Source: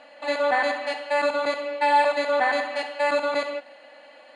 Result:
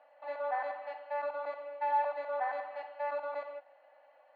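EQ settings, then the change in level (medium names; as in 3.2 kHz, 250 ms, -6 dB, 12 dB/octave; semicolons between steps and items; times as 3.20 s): ladder band-pass 880 Hz, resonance 35%; -2.0 dB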